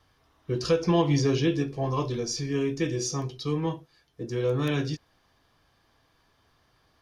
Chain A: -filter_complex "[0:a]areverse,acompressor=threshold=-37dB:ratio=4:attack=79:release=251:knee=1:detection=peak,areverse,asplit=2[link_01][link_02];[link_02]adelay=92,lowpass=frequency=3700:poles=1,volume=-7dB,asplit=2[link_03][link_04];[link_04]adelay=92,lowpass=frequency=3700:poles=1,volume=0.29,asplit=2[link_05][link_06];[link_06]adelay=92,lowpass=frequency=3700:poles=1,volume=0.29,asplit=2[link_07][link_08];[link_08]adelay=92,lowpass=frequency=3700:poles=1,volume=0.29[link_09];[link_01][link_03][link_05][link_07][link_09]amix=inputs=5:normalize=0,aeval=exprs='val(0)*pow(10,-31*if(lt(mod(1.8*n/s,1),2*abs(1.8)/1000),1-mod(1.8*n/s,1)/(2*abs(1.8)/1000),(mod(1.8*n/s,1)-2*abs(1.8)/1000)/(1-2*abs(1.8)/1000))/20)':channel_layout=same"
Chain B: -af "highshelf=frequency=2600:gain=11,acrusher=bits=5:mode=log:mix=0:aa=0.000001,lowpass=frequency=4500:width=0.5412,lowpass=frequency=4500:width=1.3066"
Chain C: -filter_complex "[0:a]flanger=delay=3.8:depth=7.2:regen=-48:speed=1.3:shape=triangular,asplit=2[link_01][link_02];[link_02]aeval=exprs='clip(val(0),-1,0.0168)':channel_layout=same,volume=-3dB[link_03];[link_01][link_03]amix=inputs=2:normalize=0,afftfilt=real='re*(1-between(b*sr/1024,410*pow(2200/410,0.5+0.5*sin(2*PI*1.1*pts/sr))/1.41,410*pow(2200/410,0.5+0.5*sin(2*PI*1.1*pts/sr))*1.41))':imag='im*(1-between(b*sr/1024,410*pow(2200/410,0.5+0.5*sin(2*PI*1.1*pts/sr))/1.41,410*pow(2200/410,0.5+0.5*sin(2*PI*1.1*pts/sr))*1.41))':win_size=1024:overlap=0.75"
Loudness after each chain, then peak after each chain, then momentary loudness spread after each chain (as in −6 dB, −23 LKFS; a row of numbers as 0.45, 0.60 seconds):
−44.5, −27.0, −29.0 LKFS; −24.5, −11.5, −12.0 dBFS; 11, 11, 11 LU